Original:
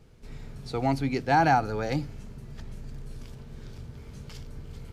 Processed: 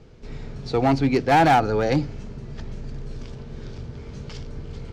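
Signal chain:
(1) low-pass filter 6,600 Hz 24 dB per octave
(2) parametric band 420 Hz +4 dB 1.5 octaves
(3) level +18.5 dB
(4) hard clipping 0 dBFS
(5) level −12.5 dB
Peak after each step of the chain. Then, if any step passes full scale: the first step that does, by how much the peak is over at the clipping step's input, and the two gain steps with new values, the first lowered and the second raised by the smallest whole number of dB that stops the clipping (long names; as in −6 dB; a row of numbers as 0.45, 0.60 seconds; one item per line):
−12.0, −9.5, +9.0, 0.0, −12.5 dBFS
step 3, 9.0 dB
step 3 +9.5 dB, step 5 −3.5 dB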